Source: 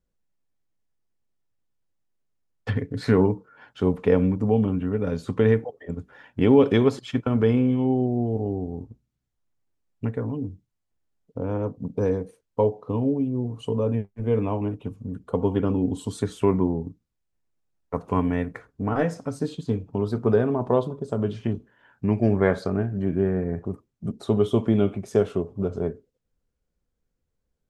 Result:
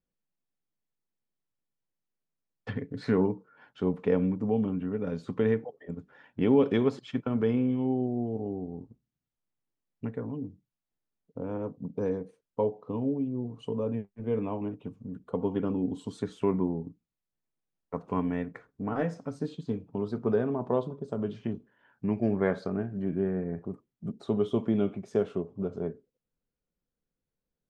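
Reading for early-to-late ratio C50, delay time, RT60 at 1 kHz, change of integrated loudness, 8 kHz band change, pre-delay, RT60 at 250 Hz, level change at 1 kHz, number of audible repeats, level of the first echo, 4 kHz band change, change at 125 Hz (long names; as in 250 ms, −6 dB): no reverb audible, no echo audible, no reverb audible, −6.5 dB, can't be measured, no reverb audible, no reverb audible, −6.5 dB, no echo audible, no echo audible, −8.0 dB, −9.0 dB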